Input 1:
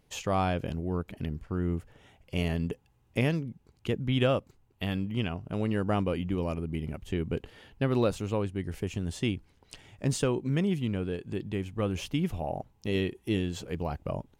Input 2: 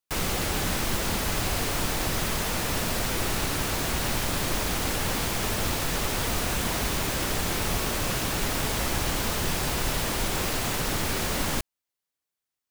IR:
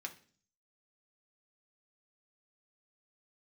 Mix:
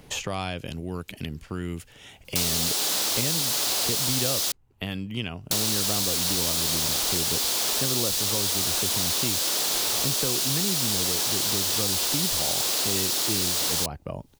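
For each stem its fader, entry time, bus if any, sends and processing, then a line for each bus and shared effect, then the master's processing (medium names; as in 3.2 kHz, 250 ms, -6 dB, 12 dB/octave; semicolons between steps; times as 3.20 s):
-3.0 dB, 0.00 s, no send, none
-5.0 dB, 2.25 s, muted 4.52–5.51 s, no send, high-pass 390 Hz; resonant high shelf 2.9 kHz +11 dB, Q 1.5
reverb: none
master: three bands compressed up and down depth 70%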